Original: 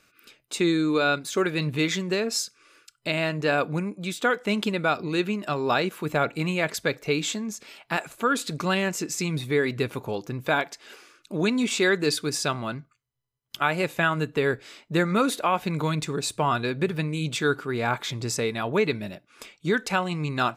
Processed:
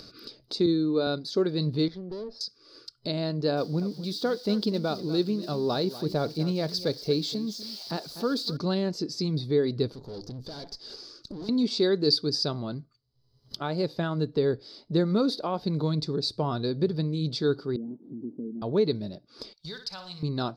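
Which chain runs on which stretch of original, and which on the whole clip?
0.66–1.07 high shelf 6700 Hz -10.5 dB + three-band expander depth 100%
1.88–2.41 LPF 1500 Hz + low shelf 260 Hz -8.5 dB + tube stage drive 33 dB, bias 0.75
3.57–8.57 switching spikes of -27.5 dBFS + echo 0.245 s -15 dB
9.92–11.49 bell 6800 Hz +9.5 dB 1.1 oct + notches 50/100/150 Hz + tube stage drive 38 dB, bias 0.7
17.76–18.62 delta modulation 32 kbps, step -38.5 dBFS + Butterworth band-pass 260 Hz, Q 2.2
19.53–20.23 G.711 law mismatch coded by A + passive tone stack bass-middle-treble 10-0-10 + flutter echo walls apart 9.9 m, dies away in 0.35 s
whole clip: EQ curve 440 Hz 0 dB, 2600 Hz -21 dB, 4700 Hz +8 dB, 7100 Hz -21 dB; upward compressor, threshold -33 dBFS

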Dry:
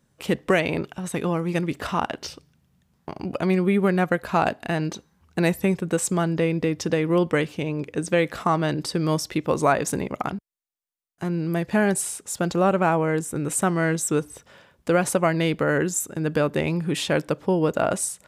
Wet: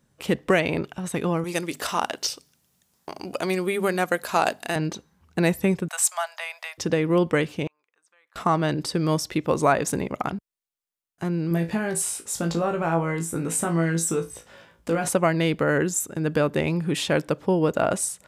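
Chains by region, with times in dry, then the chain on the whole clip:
1.44–4.76 tone controls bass -11 dB, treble +12 dB + notches 50/100/150/200/250 Hz
5.88–6.78 steep high-pass 650 Hz 72 dB/oct + high shelf 6900 Hz +9 dB
7.67–8.36 compressor 2.5:1, threshold -24 dBFS + resonant high-pass 1100 Hz, resonance Q 2.7 + flipped gate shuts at -34 dBFS, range -30 dB
11.49–15.08 compressor, threshold -21 dBFS + flutter echo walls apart 3.1 m, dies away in 0.21 s
whole clip: dry

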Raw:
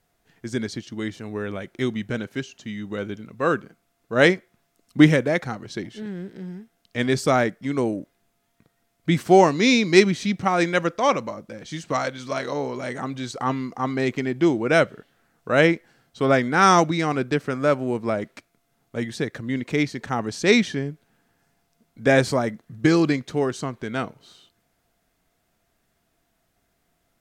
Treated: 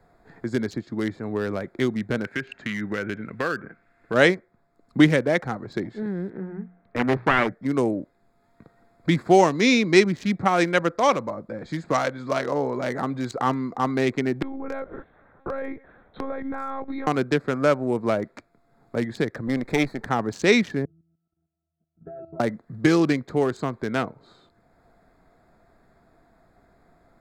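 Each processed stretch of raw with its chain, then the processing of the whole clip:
2.24–4.14 treble ducked by the level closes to 1800 Hz, closed at -22 dBFS + band shelf 2100 Hz +11.5 dB 1.3 oct + compressor 3:1, threshold -27 dBFS
6.3–7.52 self-modulated delay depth 0.67 ms + LPF 2400 Hz 24 dB/oct + notches 60/120/180 Hz
14.42–17.07 monotone LPC vocoder at 8 kHz 270 Hz + compressor 8:1, threshold -31 dBFS
19.47–20.09 minimum comb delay 0.5 ms + high shelf 7500 Hz +6.5 dB
20.85–22.4 high shelf 2300 Hz -11.5 dB + octave resonator E, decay 0.67 s + level quantiser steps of 12 dB
whole clip: Wiener smoothing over 15 samples; bell 130 Hz -3 dB 2.6 oct; three-band squash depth 40%; gain +2.5 dB

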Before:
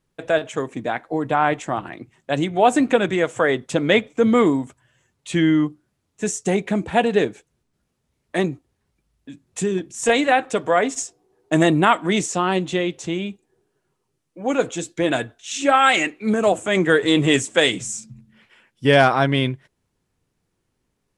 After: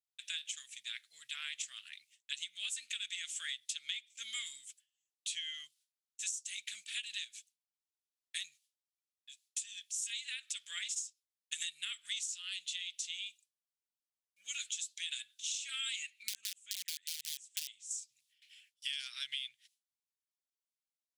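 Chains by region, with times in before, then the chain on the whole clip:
16.23–17.91 tilt -3 dB/oct + wrapped overs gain 7.5 dB
whole clip: gate with hold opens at -44 dBFS; inverse Chebyshev high-pass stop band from 920 Hz, stop band 60 dB; compressor 16:1, threshold -39 dBFS; gain +3 dB

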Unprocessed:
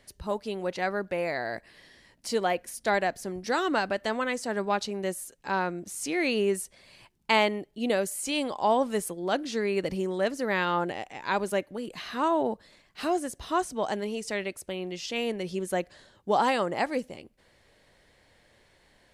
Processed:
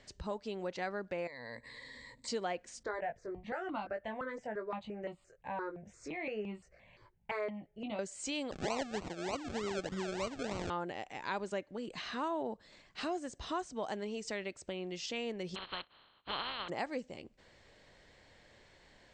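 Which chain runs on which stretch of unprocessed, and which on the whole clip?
1.27–2.28 ripple EQ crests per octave 1, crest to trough 17 dB + compressor 2.5:1, threshold -47 dBFS
2.83–7.99 tape spacing loss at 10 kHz 27 dB + doubler 19 ms -5 dB + step phaser 5.8 Hz 730–1700 Hz
8.51–10.7 bell 1400 Hz -7.5 dB 1.1 oct + decimation with a swept rate 36×, swing 60% 3.3 Hz
15.54–16.68 spectral contrast lowered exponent 0.18 + rippled Chebyshev low-pass 4300 Hz, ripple 9 dB
whole clip: steep low-pass 8100 Hz 72 dB/oct; compressor 2:1, threshold -42 dBFS

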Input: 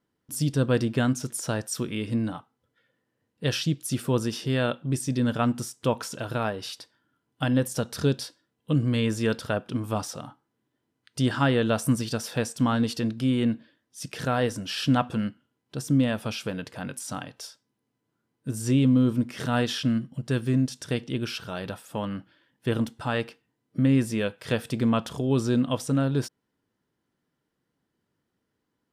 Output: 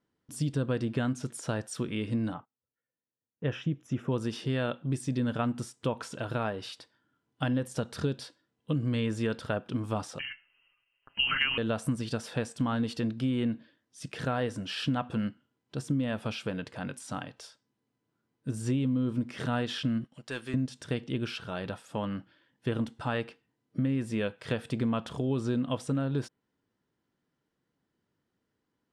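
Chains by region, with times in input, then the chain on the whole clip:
2.34–4.12 running mean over 10 samples + gate -56 dBFS, range -20 dB
10.19–11.58 transient shaper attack +4 dB, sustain +10 dB + inverted band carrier 3000 Hz + comb 7.4 ms, depth 66%
20.04–20.54 HPF 1300 Hz 6 dB/oct + sample leveller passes 1
whole clip: Bessel low-pass 7300 Hz, order 4; dynamic EQ 5700 Hz, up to -6 dB, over -53 dBFS, Q 1.6; compressor, threshold -23 dBFS; gain -2 dB

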